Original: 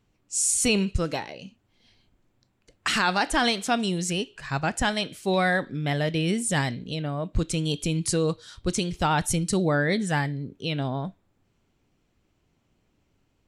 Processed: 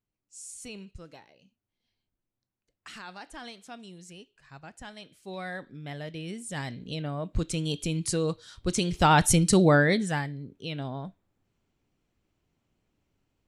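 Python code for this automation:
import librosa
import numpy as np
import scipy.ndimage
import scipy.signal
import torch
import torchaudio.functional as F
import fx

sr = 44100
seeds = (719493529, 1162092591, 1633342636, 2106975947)

y = fx.gain(x, sr, db=fx.line((4.79, -20.0), (5.66, -12.5), (6.47, -12.5), (6.89, -3.5), (8.58, -3.5), (9.11, 4.0), (9.74, 4.0), (10.27, -6.5)))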